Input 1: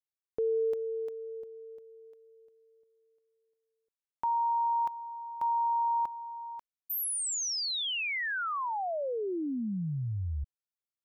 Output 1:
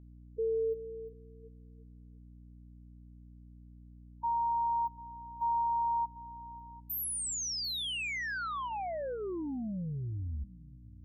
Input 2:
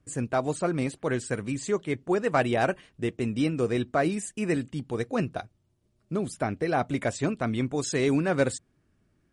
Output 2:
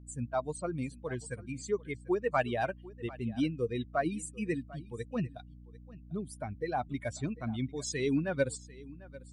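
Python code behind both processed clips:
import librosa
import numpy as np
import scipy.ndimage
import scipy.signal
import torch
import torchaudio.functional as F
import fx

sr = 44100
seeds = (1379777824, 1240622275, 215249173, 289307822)

y = fx.bin_expand(x, sr, power=2.0)
y = fx.add_hum(y, sr, base_hz=60, snr_db=16)
y = y + 10.0 ** (-20.0 / 20.0) * np.pad(y, (int(745 * sr / 1000.0), 0))[:len(y)]
y = y * librosa.db_to_amplitude(-2.0)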